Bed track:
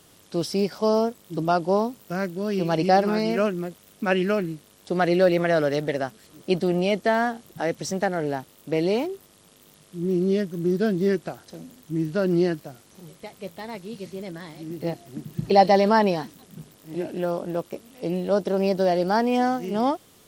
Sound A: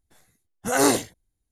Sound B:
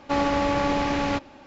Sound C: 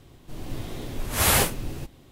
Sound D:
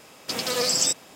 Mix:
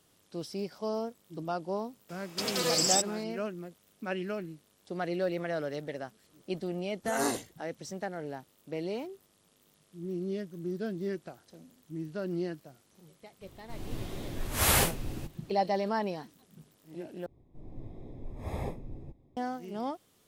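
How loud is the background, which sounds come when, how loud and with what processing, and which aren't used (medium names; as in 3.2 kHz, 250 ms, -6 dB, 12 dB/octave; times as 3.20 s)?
bed track -12.5 dB
2.09 s: add D -4.5 dB
6.40 s: add A -12 dB
13.41 s: add C -4.5 dB
17.26 s: replace with C -10 dB + boxcar filter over 30 samples
not used: B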